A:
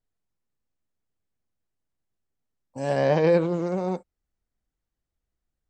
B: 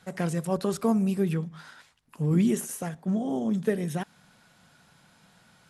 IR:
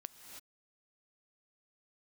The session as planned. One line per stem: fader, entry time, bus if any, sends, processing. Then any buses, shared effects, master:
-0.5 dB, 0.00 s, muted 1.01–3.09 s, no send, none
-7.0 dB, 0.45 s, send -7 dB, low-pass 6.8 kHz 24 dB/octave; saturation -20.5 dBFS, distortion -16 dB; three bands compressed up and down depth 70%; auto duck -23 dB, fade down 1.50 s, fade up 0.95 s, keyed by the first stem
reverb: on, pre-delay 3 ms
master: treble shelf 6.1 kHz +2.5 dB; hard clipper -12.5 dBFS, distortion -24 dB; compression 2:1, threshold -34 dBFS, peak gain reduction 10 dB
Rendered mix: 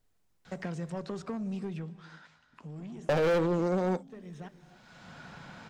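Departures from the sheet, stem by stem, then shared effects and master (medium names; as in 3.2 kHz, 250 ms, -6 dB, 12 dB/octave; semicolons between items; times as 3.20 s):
stem A -0.5 dB -> +9.5 dB; master: missing treble shelf 6.1 kHz +2.5 dB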